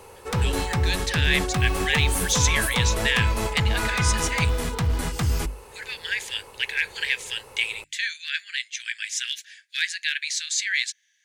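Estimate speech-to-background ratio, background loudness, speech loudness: −1.0 dB, −25.5 LKFS, −26.5 LKFS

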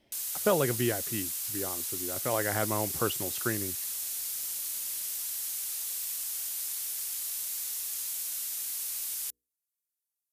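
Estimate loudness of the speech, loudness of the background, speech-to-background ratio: −33.0 LKFS, −32.0 LKFS, −1.0 dB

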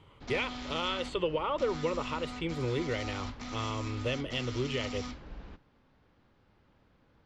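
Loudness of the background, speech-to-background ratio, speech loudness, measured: −41.5 LKFS, 7.0 dB, −34.5 LKFS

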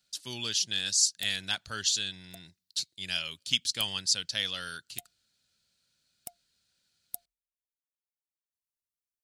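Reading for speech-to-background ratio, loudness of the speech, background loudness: 16.5 dB, −29.5 LKFS, −46.0 LKFS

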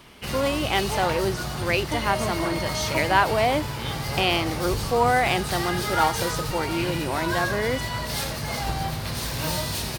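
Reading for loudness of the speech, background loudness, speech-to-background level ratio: −25.5 LKFS, −28.0 LKFS, 2.5 dB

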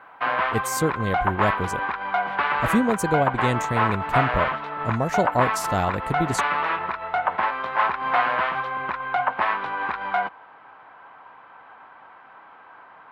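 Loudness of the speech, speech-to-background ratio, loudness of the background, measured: −26.5 LKFS, −2.0 dB, −24.5 LKFS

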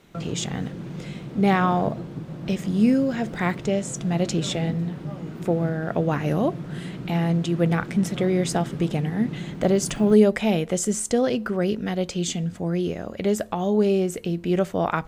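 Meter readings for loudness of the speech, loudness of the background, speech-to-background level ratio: −24.0 LKFS, −34.5 LKFS, 10.5 dB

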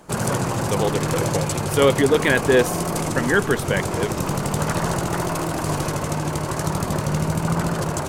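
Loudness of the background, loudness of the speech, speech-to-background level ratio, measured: −24.0 LKFS, −22.0 LKFS, 2.0 dB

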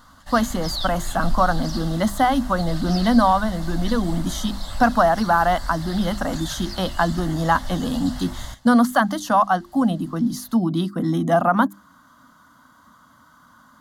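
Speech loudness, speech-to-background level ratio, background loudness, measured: −21.5 LKFS, 12.0 dB, −33.5 LKFS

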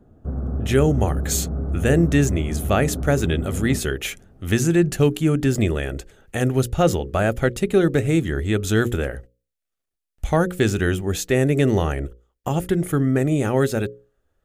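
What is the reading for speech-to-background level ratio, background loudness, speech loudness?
6.5 dB, −28.0 LKFS, −21.5 LKFS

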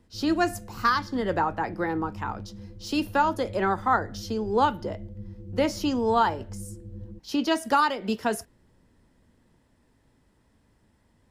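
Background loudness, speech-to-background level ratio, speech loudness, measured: −42.0 LKFS, 15.5 dB, −26.5 LKFS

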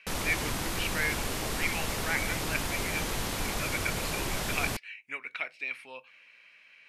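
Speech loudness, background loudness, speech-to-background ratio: −35.0 LKFS, −32.5 LKFS, −2.5 dB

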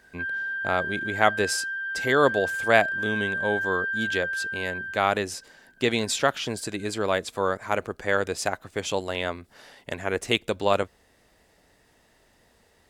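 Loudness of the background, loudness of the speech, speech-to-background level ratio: −29.0 LKFS, −26.5 LKFS, 2.5 dB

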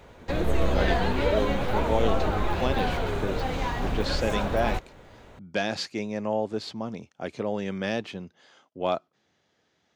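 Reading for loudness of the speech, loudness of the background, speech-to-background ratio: −31.5 LKFS, −28.0 LKFS, −3.5 dB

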